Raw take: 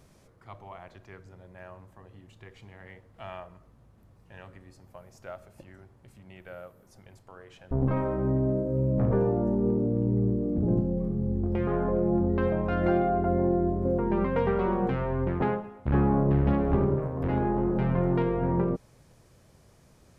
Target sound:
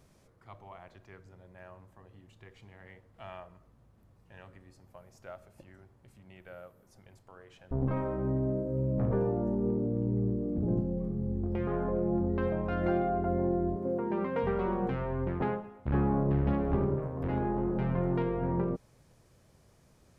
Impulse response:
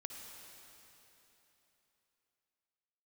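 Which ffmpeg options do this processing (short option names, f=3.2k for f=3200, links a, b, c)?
-filter_complex "[0:a]asettb=1/sr,asplit=3[a][b][c];[a]atrim=end=13.764[d];[b]atrim=start=13.76:end=14.43,asetpts=PTS-STARTPTS,afade=t=in:d=0.004:c=qsin,afade=t=out:st=0.666:d=0.004:c=qsin,highpass=180[e];[c]atrim=start=14.426[f];[d][e]acrossfade=d=0.004:c1=hsin:c2=qsin[g];[g][f]acrossfade=d=0.004:c1=qsin:c2=hsin,volume=-4.5dB"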